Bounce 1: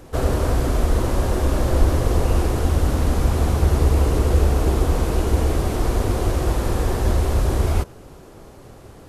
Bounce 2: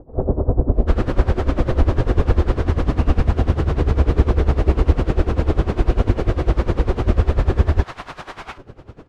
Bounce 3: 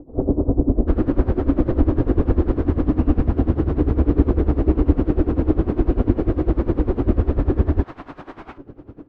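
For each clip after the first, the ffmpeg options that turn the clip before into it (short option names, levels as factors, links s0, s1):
-filter_complex "[0:a]lowpass=3000,acrossover=split=820[s0][s1];[s1]adelay=740[s2];[s0][s2]amix=inputs=2:normalize=0,aeval=exprs='val(0)*pow(10,-18*(0.5-0.5*cos(2*PI*10*n/s))/20)':c=same,volume=2.24"
-af "lowpass=f=1100:p=1,equalizer=f=290:w=2.4:g=12,volume=0.708"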